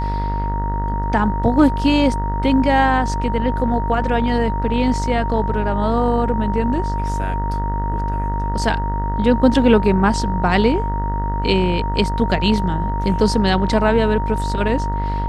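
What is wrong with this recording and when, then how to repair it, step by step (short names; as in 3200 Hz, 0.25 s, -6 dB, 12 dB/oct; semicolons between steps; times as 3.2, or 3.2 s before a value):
buzz 50 Hz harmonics 39 -22 dBFS
tone 930 Hz -24 dBFS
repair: notch 930 Hz, Q 30; de-hum 50 Hz, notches 39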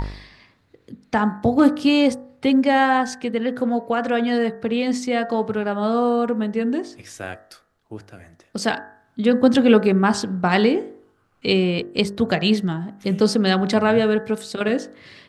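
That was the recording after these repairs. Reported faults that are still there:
none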